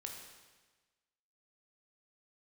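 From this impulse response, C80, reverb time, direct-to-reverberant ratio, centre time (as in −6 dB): 5.5 dB, 1.3 s, 1.0 dB, 49 ms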